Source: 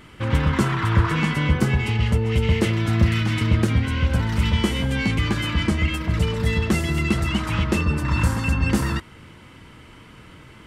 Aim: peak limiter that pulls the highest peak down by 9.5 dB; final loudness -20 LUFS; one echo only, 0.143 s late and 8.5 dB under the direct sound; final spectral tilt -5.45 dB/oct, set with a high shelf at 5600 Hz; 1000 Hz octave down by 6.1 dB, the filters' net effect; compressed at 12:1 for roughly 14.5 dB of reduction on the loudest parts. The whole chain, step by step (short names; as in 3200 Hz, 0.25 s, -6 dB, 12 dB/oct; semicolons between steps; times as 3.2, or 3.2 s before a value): bell 1000 Hz -8 dB; high shelf 5600 Hz +7 dB; compressor 12:1, threshold -28 dBFS; limiter -28 dBFS; echo 0.143 s -8.5 dB; gain +16 dB